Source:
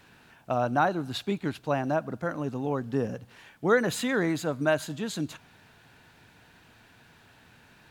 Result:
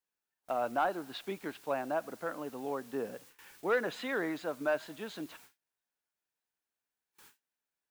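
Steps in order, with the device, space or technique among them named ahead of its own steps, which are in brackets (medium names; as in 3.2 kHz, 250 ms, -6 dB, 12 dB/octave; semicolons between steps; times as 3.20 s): tape answering machine (band-pass 350–3300 Hz; saturation -14.5 dBFS, distortion -20 dB; wow and flutter; white noise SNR 21 dB); gate with hold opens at -40 dBFS; spectral noise reduction 14 dB; trim -4.5 dB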